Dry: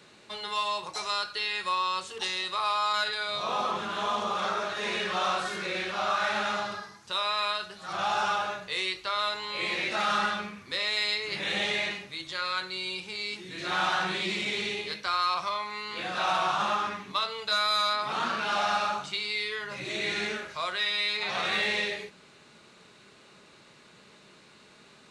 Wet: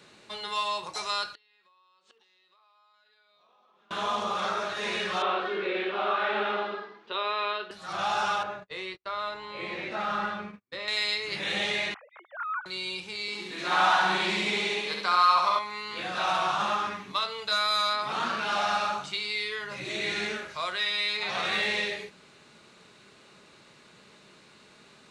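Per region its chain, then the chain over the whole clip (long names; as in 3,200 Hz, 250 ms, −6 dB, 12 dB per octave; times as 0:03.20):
0:01.34–0:03.91: downward compressor 12 to 1, threshold −34 dBFS + band-pass filter 220–4,900 Hz + gate with flip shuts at −34 dBFS, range −26 dB
0:05.22–0:07.71: Chebyshev band-pass filter 220–3,300 Hz, order 3 + parametric band 410 Hz +12.5 dB 0.44 octaves
0:08.43–0:10.88: low-pass filter 1,200 Hz 6 dB per octave + noise gate −44 dBFS, range −41 dB
0:11.94–0:12.66: three sine waves on the formant tracks + Chebyshev band-pass filter 540–1,300 Hz
0:13.28–0:15.59: Butterworth high-pass 160 Hz + parametric band 940 Hz +6.5 dB 0.98 octaves + flutter between parallel walls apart 11.7 metres, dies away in 0.95 s
whole clip: no processing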